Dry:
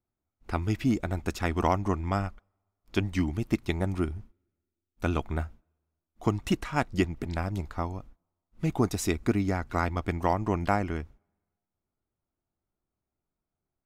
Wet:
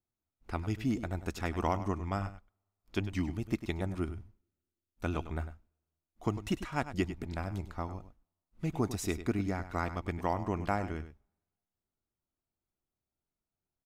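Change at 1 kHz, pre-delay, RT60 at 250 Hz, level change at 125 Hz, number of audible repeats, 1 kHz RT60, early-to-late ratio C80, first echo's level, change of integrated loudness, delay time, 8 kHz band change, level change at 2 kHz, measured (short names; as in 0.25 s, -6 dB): -6.0 dB, none, none, -5.5 dB, 1, none, none, -12.5 dB, -6.0 dB, 0.1 s, -6.0 dB, -6.0 dB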